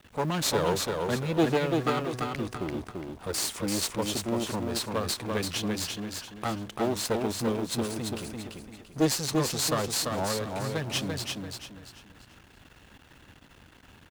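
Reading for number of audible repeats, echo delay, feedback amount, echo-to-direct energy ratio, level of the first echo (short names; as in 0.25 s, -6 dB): 4, 0.34 s, 33%, -3.5 dB, -4.0 dB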